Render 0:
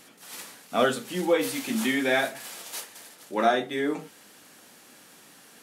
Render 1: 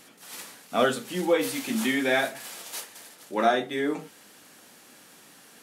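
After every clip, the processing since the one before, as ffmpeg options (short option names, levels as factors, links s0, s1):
-af anull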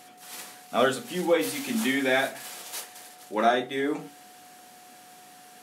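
-af "aeval=exprs='val(0)+0.00282*sin(2*PI*730*n/s)':c=same,bandreject=f=47.64:t=h:w=4,bandreject=f=95.28:t=h:w=4,bandreject=f=142.92:t=h:w=4,bandreject=f=190.56:t=h:w=4,bandreject=f=238.2:t=h:w=4,bandreject=f=285.84:t=h:w=4,bandreject=f=333.48:t=h:w=4"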